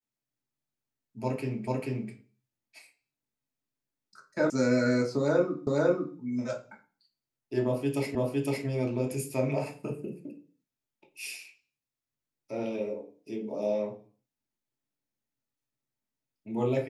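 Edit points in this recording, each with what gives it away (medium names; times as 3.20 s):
1.67 s: repeat of the last 0.44 s
4.50 s: sound stops dead
5.67 s: repeat of the last 0.5 s
8.15 s: repeat of the last 0.51 s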